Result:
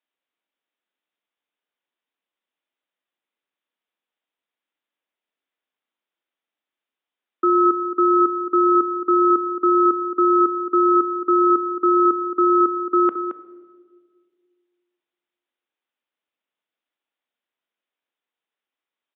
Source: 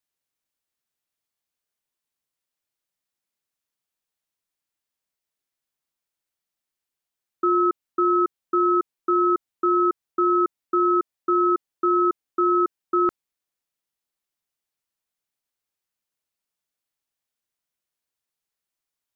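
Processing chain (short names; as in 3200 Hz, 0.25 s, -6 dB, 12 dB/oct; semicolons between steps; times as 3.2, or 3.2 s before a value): HPF 230 Hz 24 dB/oct; echo 0.221 s -9.5 dB; on a send at -12.5 dB: reverb RT60 1.7 s, pre-delay 3 ms; on the sum: downsampling 8000 Hz; gain +3 dB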